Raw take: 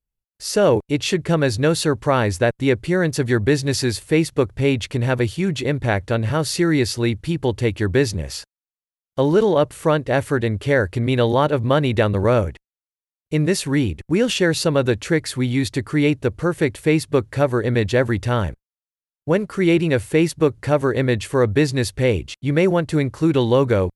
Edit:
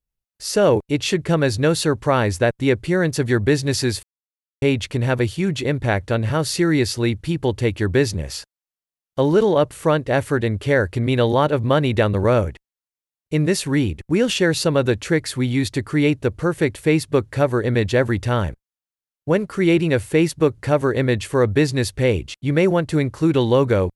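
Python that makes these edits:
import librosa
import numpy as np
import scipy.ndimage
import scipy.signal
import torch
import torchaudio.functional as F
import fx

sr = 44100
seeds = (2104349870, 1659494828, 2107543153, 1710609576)

y = fx.edit(x, sr, fx.silence(start_s=4.03, length_s=0.59), tone=tone)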